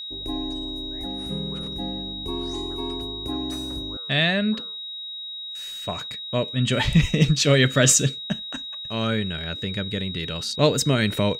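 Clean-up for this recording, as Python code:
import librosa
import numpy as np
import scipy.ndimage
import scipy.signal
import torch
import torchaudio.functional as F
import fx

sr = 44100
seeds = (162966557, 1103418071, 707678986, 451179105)

y = fx.notch(x, sr, hz=3800.0, q=30.0)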